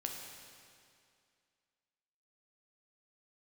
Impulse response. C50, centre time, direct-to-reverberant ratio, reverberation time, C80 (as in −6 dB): 3.0 dB, 77 ms, 1.0 dB, 2.3 s, 4.0 dB